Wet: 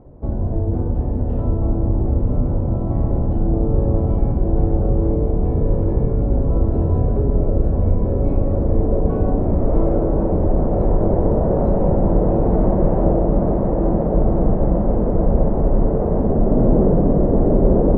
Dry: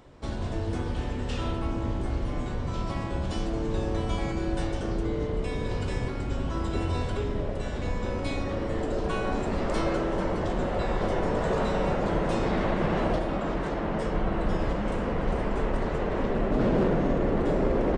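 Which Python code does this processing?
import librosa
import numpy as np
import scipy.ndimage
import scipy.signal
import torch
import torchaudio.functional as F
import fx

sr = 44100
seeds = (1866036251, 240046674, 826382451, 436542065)

p1 = fx.lowpass_res(x, sr, hz=680.0, q=1.5)
p2 = fx.low_shelf(p1, sr, hz=330.0, db=12.0)
y = p2 + fx.echo_diffused(p2, sr, ms=944, feedback_pct=67, wet_db=-5.0, dry=0)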